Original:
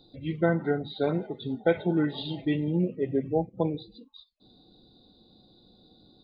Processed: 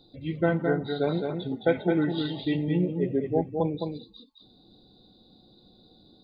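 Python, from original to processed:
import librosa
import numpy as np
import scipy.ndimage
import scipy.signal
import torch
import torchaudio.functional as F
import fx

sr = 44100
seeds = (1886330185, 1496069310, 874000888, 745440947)

y = x + 10.0 ** (-5.0 / 20.0) * np.pad(x, (int(214 * sr / 1000.0), 0))[:len(x)]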